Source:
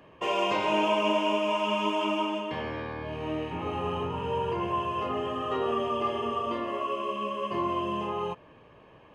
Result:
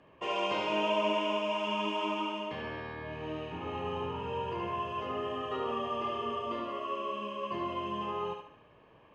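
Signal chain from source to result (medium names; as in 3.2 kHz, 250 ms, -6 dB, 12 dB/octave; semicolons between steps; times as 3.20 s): distance through air 59 m; thinning echo 73 ms, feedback 50%, high-pass 570 Hz, level -4 dB; dynamic bell 4.3 kHz, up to +3 dB, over -47 dBFS, Q 0.89; trim -6 dB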